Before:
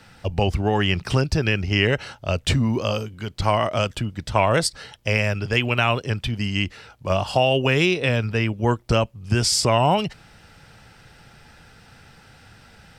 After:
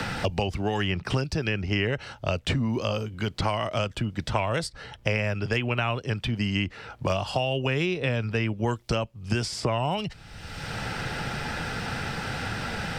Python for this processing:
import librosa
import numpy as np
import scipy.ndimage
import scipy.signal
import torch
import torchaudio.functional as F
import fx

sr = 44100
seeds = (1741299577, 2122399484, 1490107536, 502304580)

y = fx.high_shelf(x, sr, hz=7400.0, db=-7.5)
y = fx.band_squash(y, sr, depth_pct=100)
y = y * librosa.db_to_amplitude(-6.0)